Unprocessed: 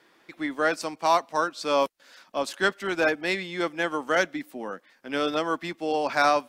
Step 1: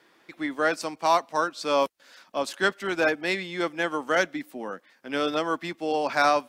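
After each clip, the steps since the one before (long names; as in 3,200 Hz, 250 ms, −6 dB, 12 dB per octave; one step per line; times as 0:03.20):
high-pass filter 43 Hz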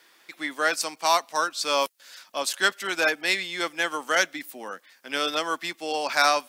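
spectral tilt +3.5 dB per octave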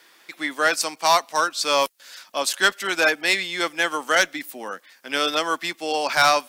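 asymmetric clip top −14 dBFS
level +4 dB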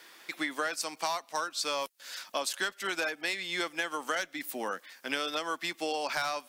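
downward compressor 10 to 1, threshold −29 dBFS, peak gain reduction 17 dB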